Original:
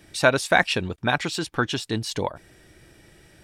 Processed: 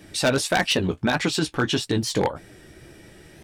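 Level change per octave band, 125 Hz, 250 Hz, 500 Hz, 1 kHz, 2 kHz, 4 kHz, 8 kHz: +2.5, +4.5, 0.0, -2.0, -3.0, +3.0, +4.0 dB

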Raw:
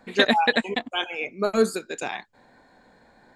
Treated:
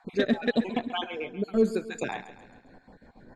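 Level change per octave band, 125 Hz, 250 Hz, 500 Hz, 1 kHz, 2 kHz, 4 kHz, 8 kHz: +1.5, +0.5, -3.5, -10.5, -10.5, -10.5, -10.0 dB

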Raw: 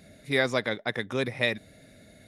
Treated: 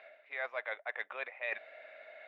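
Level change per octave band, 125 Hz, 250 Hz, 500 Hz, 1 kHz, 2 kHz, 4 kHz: under -40 dB, under -30 dB, -14.0 dB, -8.5 dB, -8.5 dB, -21.5 dB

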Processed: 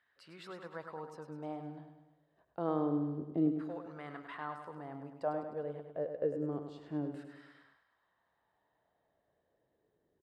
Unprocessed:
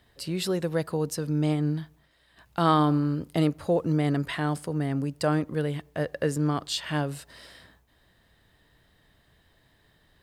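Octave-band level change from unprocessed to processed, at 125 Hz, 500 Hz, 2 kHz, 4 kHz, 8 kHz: -18.0 dB, -9.5 dB, -15.5 dB, under -20 dB, under -30 dB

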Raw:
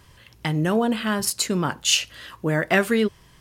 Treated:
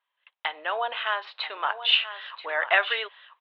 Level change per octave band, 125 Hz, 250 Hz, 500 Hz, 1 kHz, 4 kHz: under -40 dB, under -30 dB, -8.5 dB, +0.5 dB, 0.0 dB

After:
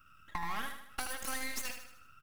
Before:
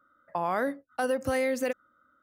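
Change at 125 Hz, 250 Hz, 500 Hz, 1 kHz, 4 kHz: -9.0, -16.0, -24.0, -8.5, +2.5 dB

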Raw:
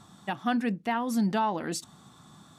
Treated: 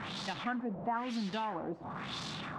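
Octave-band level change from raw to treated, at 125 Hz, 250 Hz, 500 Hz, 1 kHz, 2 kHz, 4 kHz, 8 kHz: -6.5, -9.0, -6.0, -6.5, -4.5, +1.0, -11.5 dB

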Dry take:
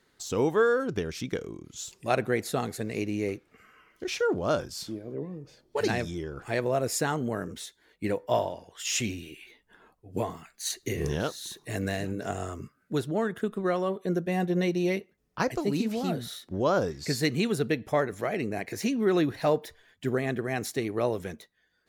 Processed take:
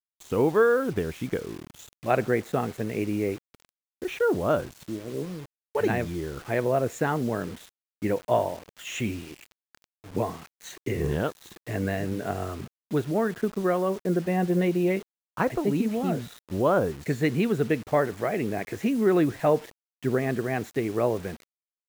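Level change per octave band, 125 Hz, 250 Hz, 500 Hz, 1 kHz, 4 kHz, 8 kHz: +3.0, +3.0, +3.0, +2.5, -6.0, -7.5 dB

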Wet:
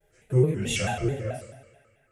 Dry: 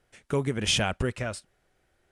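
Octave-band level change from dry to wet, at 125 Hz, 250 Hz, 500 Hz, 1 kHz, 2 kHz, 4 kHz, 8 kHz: +6.0, +2.5, +3.5, 0.0, -2.5, -7.0, -2.5 dB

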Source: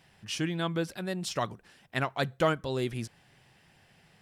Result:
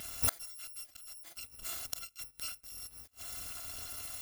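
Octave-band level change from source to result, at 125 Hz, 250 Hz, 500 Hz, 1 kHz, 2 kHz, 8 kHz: -17.0, -24.5, -23.5, -16.0, -13.0, +5.0 dB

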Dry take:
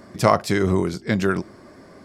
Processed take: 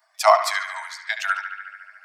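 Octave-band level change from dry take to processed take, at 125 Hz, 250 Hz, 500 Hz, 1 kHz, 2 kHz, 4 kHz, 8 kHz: under -40 dB, under -40 dB, -2.0 dB, +4.0 dB, +4.5 dB, +3.5 dB, +3.0 dB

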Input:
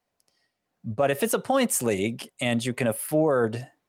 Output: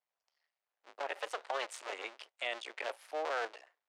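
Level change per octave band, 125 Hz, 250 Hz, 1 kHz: under -40 dB, -32.0 dB, -9.0 dB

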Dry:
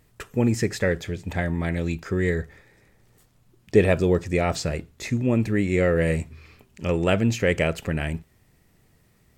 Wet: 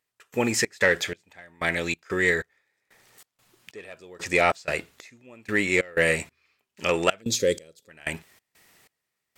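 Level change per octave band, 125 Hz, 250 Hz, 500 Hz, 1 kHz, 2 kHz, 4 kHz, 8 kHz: -13.0, -8.0, -3.0, +2.5, +5.0, +4.0, +6.0 dB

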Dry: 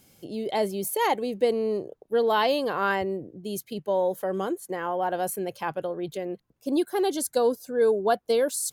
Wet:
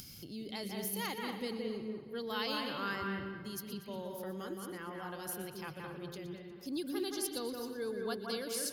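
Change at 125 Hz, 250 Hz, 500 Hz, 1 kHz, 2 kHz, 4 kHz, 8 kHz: -6.0, -9.0, -16.5, -15.5, -9.0, -5.0, -8.5 dB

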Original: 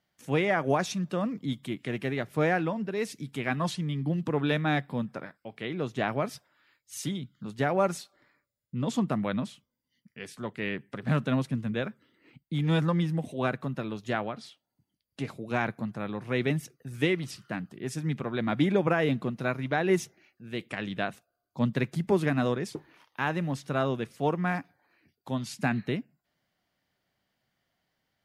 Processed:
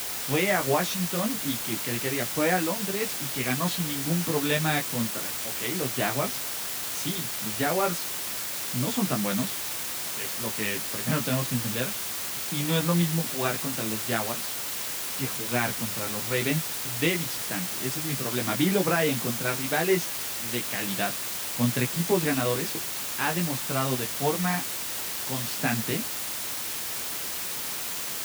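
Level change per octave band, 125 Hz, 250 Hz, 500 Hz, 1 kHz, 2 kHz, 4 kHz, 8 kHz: 0.0, +0.5, +1.0, +2.0, +3.5, +10.5, +18.0 dB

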